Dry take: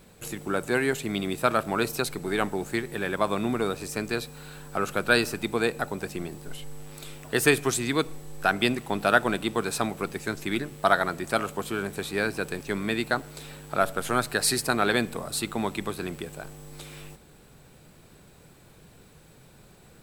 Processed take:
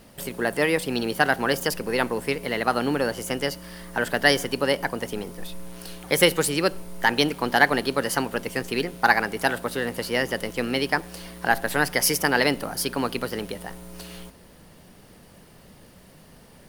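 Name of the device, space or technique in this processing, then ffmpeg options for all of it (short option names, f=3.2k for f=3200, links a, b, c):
nightcore: -af "asetrate=52920,aresample=44100,volume=3dB"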